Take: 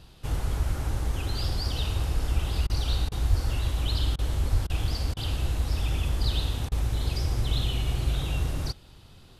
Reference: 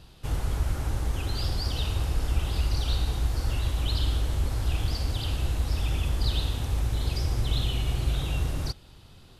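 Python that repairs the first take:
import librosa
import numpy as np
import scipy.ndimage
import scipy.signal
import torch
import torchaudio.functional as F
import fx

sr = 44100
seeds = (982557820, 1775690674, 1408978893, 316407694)

y = fx.fix_deplosive(x, sr, at_s=(3.29, 4.51))
y = fx.fix_interpolate(y, sr, at_s=(2.67, 3.09, 4.16, 4.67, 5.14, 6.69), length_ms=26.0)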